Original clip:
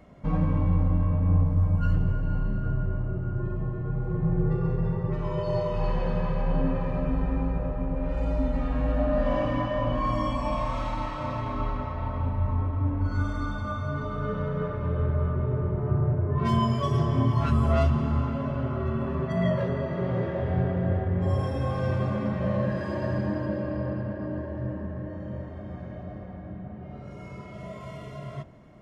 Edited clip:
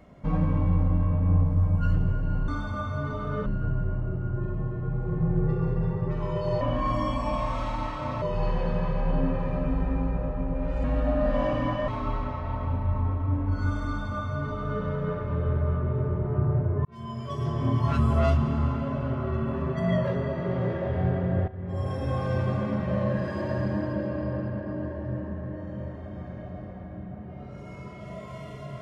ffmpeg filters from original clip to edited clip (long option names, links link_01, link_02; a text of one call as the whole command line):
ffmpeg -i in.wav -filter_complex "[0:a]asplit=9[link_01][link_02][link_03][link_04][link_05][link_06][link_07][link_08][link_09];[link_01]atrim=end=2.482[link_10];[link_02]atrim=start=13.388:end=14.372[link_11];[link_03]atrim=start=2.478:end=5.632[link_12];[link_04]atrim=start=9.798:end=11.412[link_13];[link_05]atrim=start=5.628:end=8.252[link_14];[link_06]atrim=start=8.758:end=9.802[link_15];[link_07]atrim=start=11.408:end=16.38,asetpts=PTS-STARTPTS,afade=type=out:start_time=4.968:duration=0.004:curve=hsin[link_16];[link_08]atrim=start=16.38:end=21.01,asetpts=PTS-STARTPTS,afade=type=in:duration=1.04,afade=type=out:start_time=4.626:duration=0.004:curve=hsin:silence=0.16788[link_17];[link_09]atrim=start=21.01,asetpts=PTS-STARTPTS,afade=type=in:duration=0.63:silence=0.16788[link_18];[link_10][link_11]acrossfade=duration=0.004:curve1=hsin:curve2=hsin[link_19];[link_19][link_12]acrossfade=duration=0.004:curve1=hsin:curve2=hsin[link_20];[link_20][link_13]acrossfade=duration=0.004:curve1=hsin:curve2=hsin[link_21];[link_21][link_14]acrossfade=duration=0.004:curve1=hsin:curve2=hsin[link_22];[link_22][link_15]acrossfade=duration=0.004:curve1=hsin:curve2=hsin[link_23];[link_16][link_17][link_18]concat=n=3:v=0:a=1[link_24];[link_23][link_24]acrossfade=duration=0.004:curve1=hsin:curve2=hsin" out.wav